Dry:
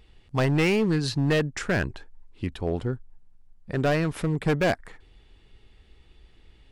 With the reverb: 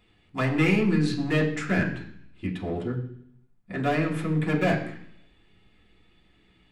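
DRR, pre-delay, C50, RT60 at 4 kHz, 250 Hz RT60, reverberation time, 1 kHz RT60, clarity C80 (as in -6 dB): -5.0 dB, 3 ms, 9.0 dB, 0.85 s, 0.80 s, 0.65 s, 0.65 s, 11.0 dB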